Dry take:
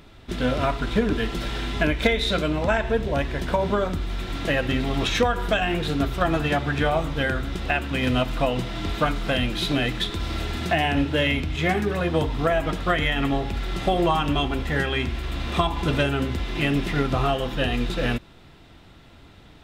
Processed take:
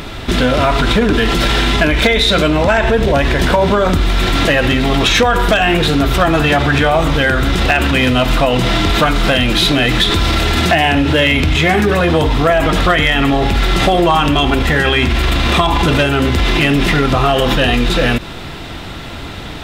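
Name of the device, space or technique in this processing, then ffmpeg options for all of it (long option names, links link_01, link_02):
loud club master: -af "acompressor=threshold=-24dB:ratio=2,asoftclip=type=hard:threshold=-17.5dB,alimiter=level_in=26dB:limit=-1dB:release=50:level=0:latency=1,lowshelf=frequency=490:gain=-3.5,volume=-2dB"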